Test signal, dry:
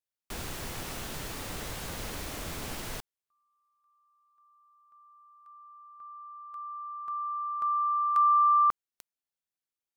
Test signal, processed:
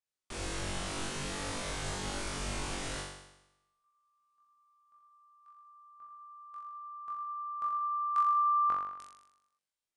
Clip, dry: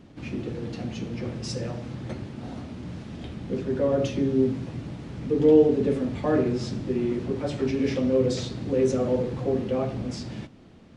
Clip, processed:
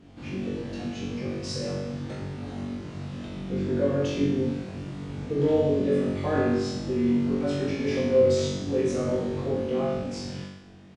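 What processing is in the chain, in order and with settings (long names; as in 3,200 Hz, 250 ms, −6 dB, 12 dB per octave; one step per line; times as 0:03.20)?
on a send: flutter between parallel walls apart 3.6 metres, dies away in 0.89 s
on the sum: downsampling to 22,050 Hz
level −4 dB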